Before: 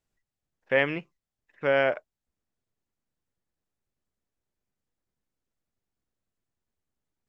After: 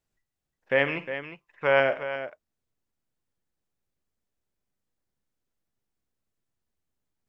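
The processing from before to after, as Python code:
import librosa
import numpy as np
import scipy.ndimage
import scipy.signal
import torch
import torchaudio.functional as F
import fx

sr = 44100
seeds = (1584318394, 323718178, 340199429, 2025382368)

y = fx.graphic_eq_15(x, sr, hz=(250, 1000, 2500), db=(-7, 8, 4), at=(0.87, 1.8))
y = fx.echo_multitap(y, sr, ms=(51, 130, 358), db=(-14.5, -19.5, -10.5))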